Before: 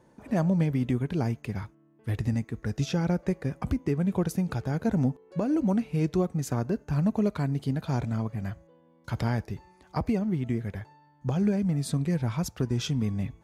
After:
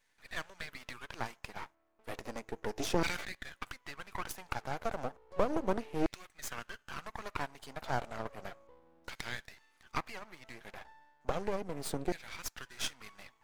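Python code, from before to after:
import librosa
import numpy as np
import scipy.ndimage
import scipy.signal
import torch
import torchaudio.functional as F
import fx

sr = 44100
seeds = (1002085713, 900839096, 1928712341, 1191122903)

y = fx.hpss(x, sr, part='harmonic', gain_db=-5)
y = fx.filter_lfo_highpass(y, sr, shape='saw_down', hz=0.33, low_hz=350.0, high_hz=2200.0, q=2.4)
y = np.maximum(y, 0.0)
y = fx.sustainer(y, sr, db_per_s=59.0, at=(2.79, 3.35))
y = F.gain(torch.from_numpy(y), 1.5).numpy()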